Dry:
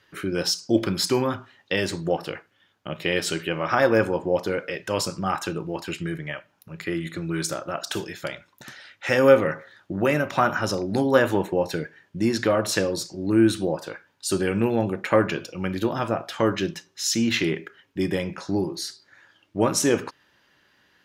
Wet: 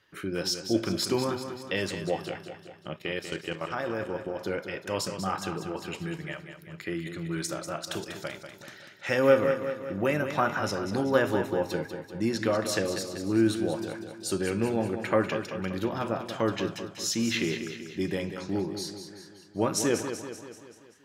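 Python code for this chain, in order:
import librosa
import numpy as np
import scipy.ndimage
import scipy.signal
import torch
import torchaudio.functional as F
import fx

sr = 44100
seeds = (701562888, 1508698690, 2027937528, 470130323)

y = fx.level_steps(x, sr, step_db=13, at=(2.96, 4.41))
y = fx.echo_feedback(y, sr, ms=192, feedback_pct=55, wet_db=-9)
y = y * 10.0 ** (-5.5 / 20.0)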